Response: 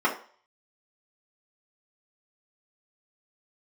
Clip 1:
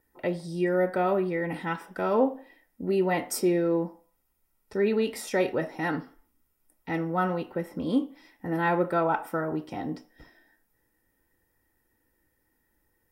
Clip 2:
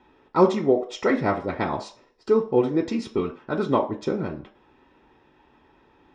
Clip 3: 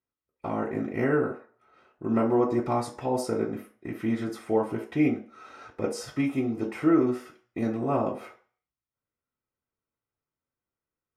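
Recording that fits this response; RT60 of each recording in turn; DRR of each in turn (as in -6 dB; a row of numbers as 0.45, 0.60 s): 3; 0.45, 0.45, 0.45 s; 5.5, 0.0, -5.0 dB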